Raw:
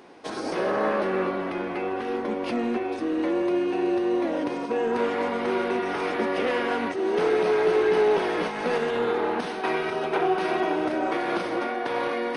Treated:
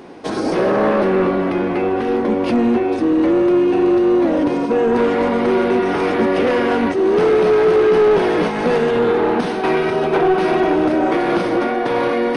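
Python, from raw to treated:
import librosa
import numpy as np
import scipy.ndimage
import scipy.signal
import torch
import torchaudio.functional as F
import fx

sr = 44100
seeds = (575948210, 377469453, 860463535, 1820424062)

y = fx.low_shelf(x, sr, hz=420.0, db=9.5)
y = 10.0 ** (-15.5 / 20.0) * np.tanh(y / 10.0 ** (-15.5 / 20.0))
y = y * librosa.db_to_amplitude(7.0)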